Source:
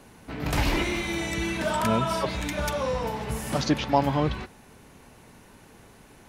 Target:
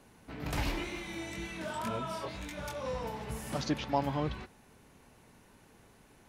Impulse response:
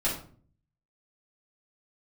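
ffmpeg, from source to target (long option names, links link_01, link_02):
-filter_complex "[0:a]asplit=3[link_01][link_02][link_03];[link_01]afade=type=out:start_time=0.71:duration=0.02[link_04];[link_02]flanger=delay=19.5:depth=4.9:speed=2,afade=type=in:start_time=0.71:duration=0.02,afade=type=out:start_time=2.84:duration=0.02[link_05];[link_03]afade=type=in:start_time=2.84:duration=0.02[link_06];[link_04][link_05][link_06]amix=inputs=3:normalize=0,volume=-8.5dB"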